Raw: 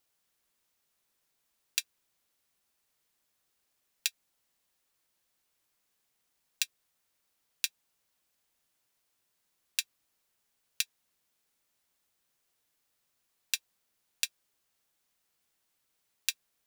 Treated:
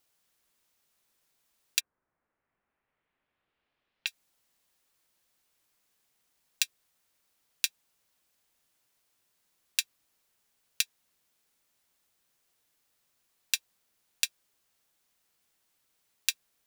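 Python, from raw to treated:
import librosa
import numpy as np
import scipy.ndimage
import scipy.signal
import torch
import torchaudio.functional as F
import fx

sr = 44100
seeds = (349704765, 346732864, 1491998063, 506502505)

y = fx.lowpass(x, sr, hz=fx.line((1.79, 1500.0), (4.06, 3800.0)), slope=24, at=(1.79, 4.06), fade=0.02)
y = F.gain(torch.from_numpy(y), 3.0).numpy()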